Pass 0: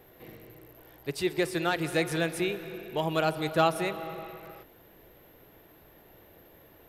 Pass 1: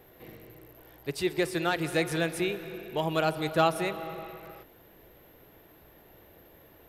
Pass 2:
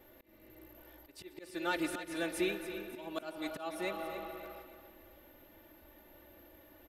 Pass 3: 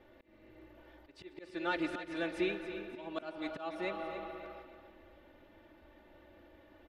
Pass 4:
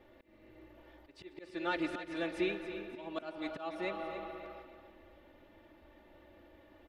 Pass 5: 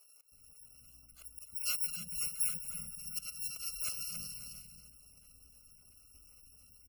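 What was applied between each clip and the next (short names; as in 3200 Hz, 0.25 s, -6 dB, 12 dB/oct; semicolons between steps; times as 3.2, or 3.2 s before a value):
bell 65 Hz +4.5 dB 0.24 oct
comb 3.4 ms, depth 89%; auto swell 0.412 s; on a send: feedback echo 0.28 s, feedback 37%, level -11 dB; on the sum: gain -6 dB
LPF 3800 Hz 12 dB/oct
notch 1500 Hz, Q 25
FFT order left unsorted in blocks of 128 samples; spectral gate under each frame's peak -25 dB strong; bands offset in time highs, lows 0.32 s, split 400 Hz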